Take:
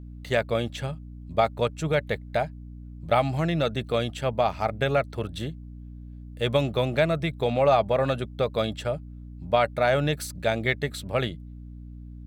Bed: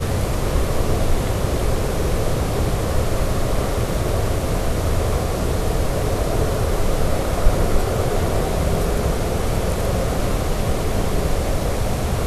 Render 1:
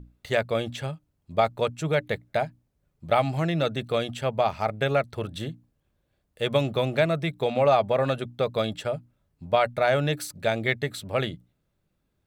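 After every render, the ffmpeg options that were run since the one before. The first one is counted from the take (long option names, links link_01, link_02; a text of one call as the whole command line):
ffmpeg -i in.wav -af "bandreject=frequency=60:width_type=h:width=6,bandreject=frequency=120:width_type=h:width=6,bandreject=frequency=180:width_type=h:width=6,bandreject=frequency=240:width_type=h:width=6,bandreject=frequency=300:width_type=h:width=6" out.wav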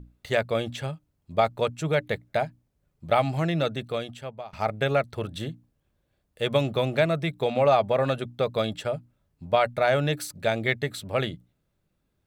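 ffmpeg -i in.wav -filter_complex "[0:a]asplit=2[link_01][link_02];[link_01]atrim=end=4.53,asetpts=PTS-STARTPTS,afade=type=out:start_time=3.57:duration=0.96:silence=0.0668344[link_03];[link_02]atrim=start=4.53,asetpts=PTS-STARTPTS,afade=type=in:duration=0.004:curve=hsin:silence=0.0668344[link_04];[link_03][link_04]concat=n=2:v=0:a=1" out.wav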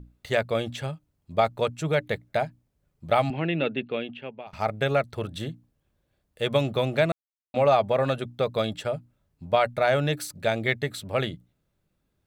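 ffmpeg -i in.wav -filter_complex "[0:a]asettb=1/sr,asplit=3[link_01][link_02][link_03];[link_01]atrim=end=3.304[link_04];[link_02]atrim=start=3.3:end=4.47,asetpts=PTS-STARTPTS,afade=type=in:duration=0.004:curve=qsin,afade=type=out:start_time=1.166:duration=0.004:curve=qsin,highpass=180,equalizer=frequency=250:width_type=q:width=4:gain=7,equalizer=frequency=390:width_type=q:width=4:gain=4,equalizer=frequency=660:width_type=q:width=4:gain=-5,equalizer=frequency=1200:width_type=q:width=4:gain=-6,equalizer=frequency=2700:width_type=q:width=4:gain=9,lowpass=frequency=3200:width=0.5412,lowpass=frequency=3200:width=1.3066[link_05];[link_03]atrim=start=4.466[link_06];[link_04][link_05]acrossfade=duration=0.004:curve1=hsin:curve2=qsin[link_07];[link_07][link_06]acrossfade=duration=0.004:curve1=qsin:curve2=hsin,asplit=3[link_08][link_09][link_10];[link_08]atrim=end=7.12,asetpts=PTS-STARTPTS,afade=type=out:start_time=7.116:duration=0.004:curve=hsin[link_11];[link_09]atrim=start=7.12:end=7.54,asetpts=PTS-STARTPTS,volume=0[link_12];[link_10]atrim=start=7.54,asetpts=PTS-STARTPTS,afade=type=in:duration=0.004:curve=hsin[link_13];[link_11][link_12][link_13]concat=n=3:v=0:a=1" out.wav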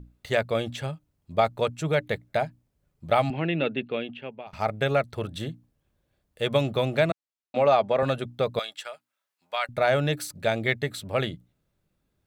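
ffmpeg -i in.wav -filter_complex "[0:a]asettb=1/sr,asplit=3[link_01][link_02][link_03];[link_01]atrim=end=7.104[link_04];[link_02]atrim=start=7.1:end=8.03,asetpts=PTS-STARTPTS,afade=type=in:duration=0.004:curve=qsin,afade=type=out:start_time=0.926:duration=0.004:curve=qsin,highpass=160,lowpass=7200[link_05];[link_03]atrim=start=8.026[link_06];[link_04][link_05]acrossfade=duration=0.004:curve1=hsin:curve2=qsin[link_07];[link_07][link_06]acrossfade=duration=0.004:curve1=qsin:curve2=hsin,asettb=1/sr,asplit=3[link_08][link_09][link_10];[link_08]atrim=end=8.594[link_11];[link_09]atrim=start=8.59:end=9.69,asetpts=PTS-STARTPTS,afade=type=in:duration=0.004:curve=qsin,afade=type=out:start_time=1.096:duration=0.004:curve=qsin,highpass=1200[link_12];[link_10]atrim=start=9.686[link_13];[link_11][link_12]acrossfade=duration=0.004:curve1=hsin:curve2=qsin[link_14];[link_14][link_13]acrossfade=duration=0.004:curve1=qsin:curve2=hsin" out.wav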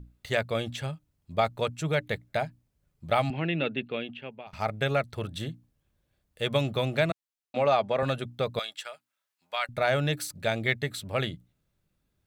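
ffmpeg -i in.wav -af "equalizer=frequency=500:width_type=o:width=2.7:gain=-4" out.wav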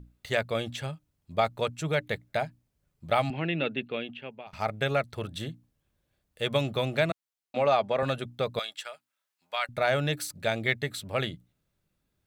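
ffmpeg -i in.wav -af "lowshelf=frequency=150:gain=-3.5" out.wav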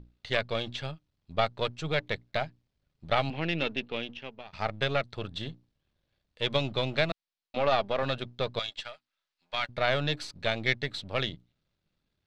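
ffmpeg -i in.wav -af "aeval=exprs='if(lt(val(0),0),0.447*val(0),val(0))':channel_layout=same,lowpass=frequency=4300:width_type=q:width=1.7" out.wav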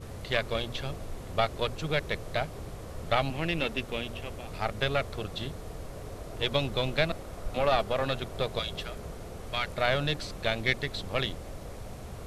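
ffmpeg -i in.wav -i bed.wav -filter_complex "[1:a]volume=-20.5dB[link_01];[0:a][link_01]amix=inputs=2:normalize=0" out.wav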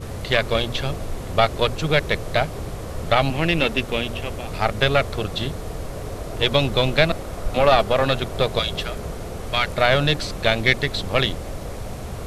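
ffmpeg -i in.wav -af "volume=10dB,alimiter=limit=-2dB:level=0:latency=1" out.wav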